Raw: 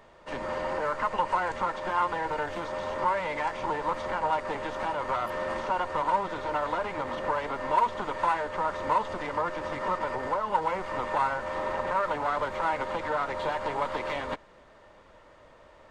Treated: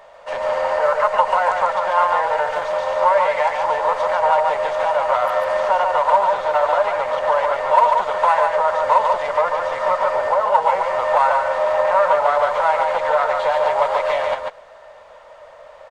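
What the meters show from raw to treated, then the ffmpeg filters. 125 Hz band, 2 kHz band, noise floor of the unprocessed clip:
no reading, +9.0 dB, -55 dBFS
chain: -af "lowshelf=f=430:t=q:w=3:g=-11,aecho=1:1:143:0.631,volume=2.24"

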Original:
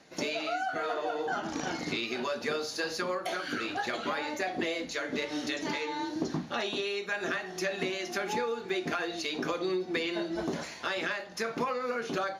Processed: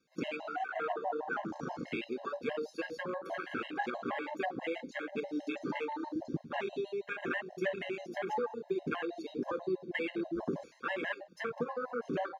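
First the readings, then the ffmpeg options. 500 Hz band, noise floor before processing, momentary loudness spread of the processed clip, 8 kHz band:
-3.5 dB, -43 dBFS, 4 LU, under -15 dB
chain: -af "afwtdn=0.02,afftfilt=real='re*gt(sin(2*PI*6.2*pts/sr)*(1-2*mod(floor(b*sr/1024/540),2)),0)':imag='im*gt(sin(2*PI*6.2*pts/sr)*(1-2*mod(floor(b*sr/1024/540),2)),0)':win_size=1024:overlap=0.75"

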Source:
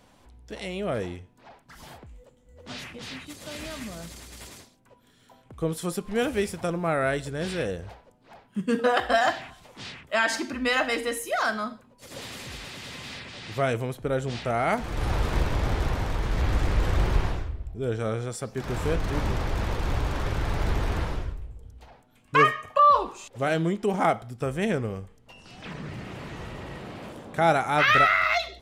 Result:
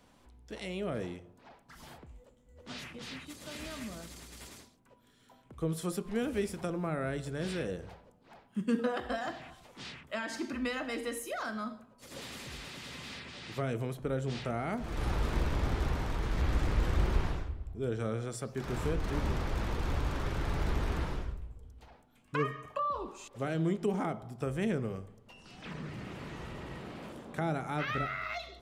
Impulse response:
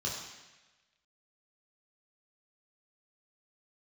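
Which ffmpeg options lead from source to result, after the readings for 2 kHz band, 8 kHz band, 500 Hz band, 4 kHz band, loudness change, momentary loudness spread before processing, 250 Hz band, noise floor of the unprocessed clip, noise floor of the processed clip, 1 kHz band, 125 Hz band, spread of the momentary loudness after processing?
-13.0 dB, -7.5 dB, -8.5 dB, -10.0 dB, -9.5 dB, 18 LU, -4.5 dB, -59 dBFS, -63 dBFS, -13.5 dB, -5.5 dB, 15 LU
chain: -filter_complex "[0:a]acrossover=split=410[s0][s1];[s1]acompressor=threshold=0.0282:ratio=4[s2];[s0][s2]amix=inputs=2:normalize=0,asplit=2[s3][s4];[1:a]atrim=start_sample=2205,lowpass=f=1200:w=0.5412,lowpass=f=1200:w=1.3066[s5];[s4][s5]afir=irnorm=-1:irlink=0,volume=0.168[s6];[s3][s6]amix=inputs=2:normalize=0,volume=0.531"

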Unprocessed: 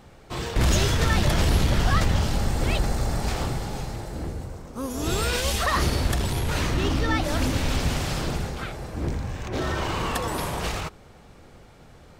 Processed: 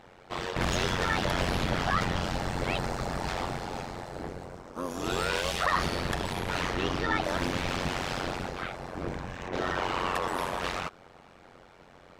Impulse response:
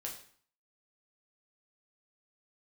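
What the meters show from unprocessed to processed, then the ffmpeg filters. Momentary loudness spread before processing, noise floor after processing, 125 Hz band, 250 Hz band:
12 LU, -55 dBFS, -10.5 dB, -6.0 dB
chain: -filter_complex "[0:a]tremolo=f=90:d=0.974,asplit=2[s0][s1];[s1]highpass=f=720:p=1,volume=5.62,asoftclip=type=tanh:threshold=0.316[s2];[s0][s2]amix=inputs=2:normalize=0,lowpass=f=2000:p=1,volume=0.501,volume=0.708"

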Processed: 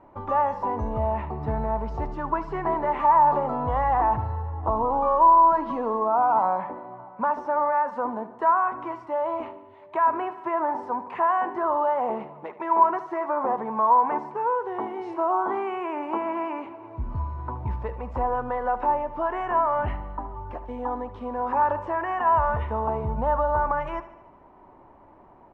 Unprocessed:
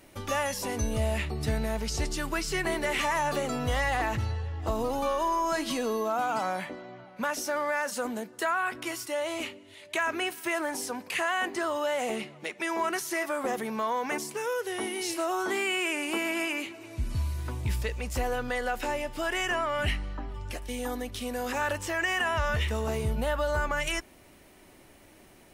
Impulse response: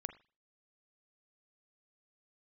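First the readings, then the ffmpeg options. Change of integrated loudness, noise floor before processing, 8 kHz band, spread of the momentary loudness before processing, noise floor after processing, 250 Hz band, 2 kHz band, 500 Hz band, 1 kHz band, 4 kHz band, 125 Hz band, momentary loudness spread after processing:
+5.5 dB, -55 dBFS, under -30 dB, 7 LU, -51 dBFS, +0.5 dB, -6.5 dB, +3.5 dB, +11.0 dB, under -15 dB, +0.5 dB, 13 LU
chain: -af "lowpass=f=970:t=q:w=5.2,aecho=1:1:74|148|222|296|370|444:0.178|0.103|0.0598|0.0347|0.0201|0.0117"

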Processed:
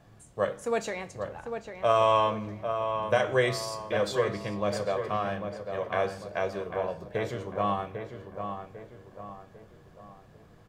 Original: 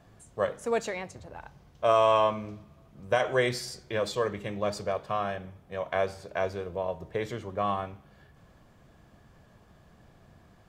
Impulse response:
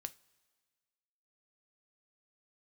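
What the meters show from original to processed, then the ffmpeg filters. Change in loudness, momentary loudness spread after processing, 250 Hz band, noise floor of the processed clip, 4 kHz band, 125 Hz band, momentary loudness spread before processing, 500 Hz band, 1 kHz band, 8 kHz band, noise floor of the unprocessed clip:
0.0 dB, 16 LU, +1.5 dB, -55 dBFS, +0.5 dB, +2.0 dB, 16 LU, +0.5 dB, +1.0 dB, 0.0 dB, -59 dBFS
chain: -filter_complex "[0:a]asplit=2[s0][s1];[s1]adelay=798,lowpass=f=2200:p=1,volume=0.447,asplit=2[s2][s3];[s3]adelay=798,lowpass=f=2200:p=1,volume=0.45,asplit=2[s4][s5];[s5]adelay=798,lowpass=f=2200:p=1,volume=0.45,asplit=2[s6][s7];[s7]adelay=798,lowpass=f=2200:p=1,volume=0.45,asplit=2[s8][s9];[s9]adelay=798,lowpass=f=2200:p=1,volume=0.45[s10];[s0][s2][s4][s6][s8][s10]amix=inputs=6:normalize=0[s11];[1:a]atrim=start_sample=2205[s12];[s11][s12]afir=irnorm=-1:irlink=0,volume=1.5"

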